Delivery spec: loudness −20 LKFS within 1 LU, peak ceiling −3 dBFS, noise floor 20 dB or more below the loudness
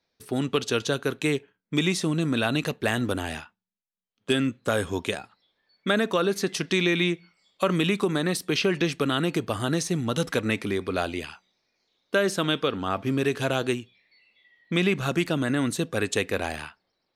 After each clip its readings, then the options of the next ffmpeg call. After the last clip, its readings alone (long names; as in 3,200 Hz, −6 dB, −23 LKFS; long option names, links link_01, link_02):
integrated loudness −26.5 LKFS; sample peak −10.0 dBFS; target loudness −20.0 LKFS
→ -af "volume=6.5dB"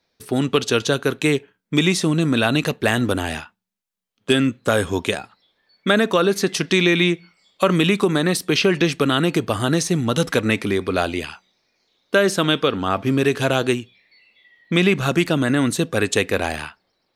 integrated loudness −20.0 LKFS; sample peak −3.5 dBFS; background noise floor −72 dBFS